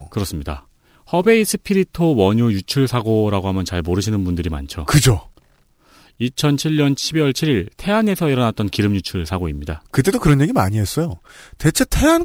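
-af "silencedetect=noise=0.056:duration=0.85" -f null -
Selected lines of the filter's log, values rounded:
silence_start: 5.19
silence_end: 6.21 | silence_duration: 1.02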